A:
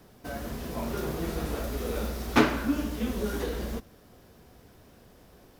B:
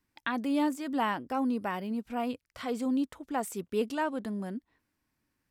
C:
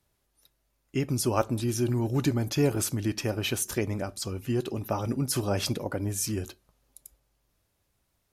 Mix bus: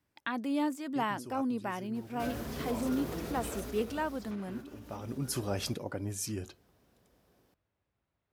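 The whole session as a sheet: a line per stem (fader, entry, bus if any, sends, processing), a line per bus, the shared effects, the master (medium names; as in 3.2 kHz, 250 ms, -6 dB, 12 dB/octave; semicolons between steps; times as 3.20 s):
3.52 s -1 dB -> 4.21 s -13 dB, 1.95 s, no send, compression 5:1, threshold -31 dBFS, peak gain reduction 15 dB; peak limiter -28 dBFS, peak gain reduction 8.5 dB
-3.0 dB, 0.00 s, no send, none
-6.0 dB, 0.00 s, no send, level-controlled noise filter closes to 2.5 kHz, open at -25 dBFS; auto duck -15 dB, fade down 1.35 s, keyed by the second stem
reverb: none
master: high-pass 64 Hz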